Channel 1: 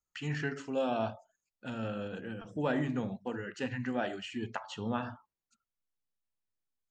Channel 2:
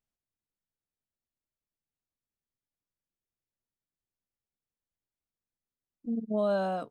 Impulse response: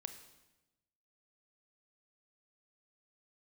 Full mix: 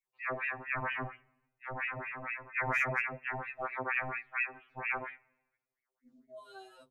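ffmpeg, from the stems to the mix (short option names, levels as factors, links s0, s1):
-filter_complex "[0:a]lowpass=f=350:t=q:w=3.9,aeval=exprs='val(0)*sin(2*PI*1300*n/s+1300*0.75/4.3*sin(2*PI*4.3*n/s))':c=same,volume=0.75,asplit=2[s0][s1];[s1]volume=0.282[s2];[1:a]highshelf=f=3600:g=10,volume=0.158[s3];[2:a]atrim=start_sample=2205[s4];[s2][s4]afir=irnorm=-1:irlink=0[s5];[s0][s3][s5]amix=inputs=3:normalize=0,highshelf=f=2600:g=5.5,asoftclip=type=hard:threshold=0.119,afftfilt=real='re*2.45*eq(mod(b,6),0)':imag='im*2.45*eq(mod(b,6),0)':win_size=2048:overlap=0.75"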